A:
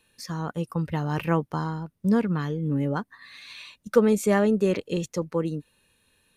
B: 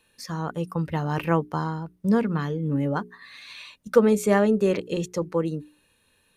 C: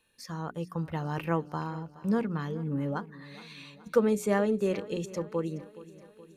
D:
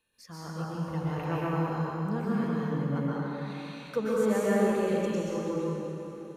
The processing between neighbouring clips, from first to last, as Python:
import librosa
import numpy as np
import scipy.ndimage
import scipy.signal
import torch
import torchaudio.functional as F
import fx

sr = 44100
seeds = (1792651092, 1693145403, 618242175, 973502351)

y1 = fx.peak_eq(x, sr, hz=740.0, db=2.5, octaves=2.8)
y1 = fx.hum_notches(y1, sr, base_hz=60, count=7)
y2 = fx.echo_feedback(y1, sr, ms=422, feedback_pct=57, wet_db=-18)
y2 = y2 * librosa.db_to_amplitude(-6.5)
y3 = fx.rev_plate(y2, sr, seeds[0], rt60_s=3.1, hf_ratio=0.75, predelay_ms=110, drr_db=-7.5)
y3 = y3 * librosa.db_to_amplitude(-7.0)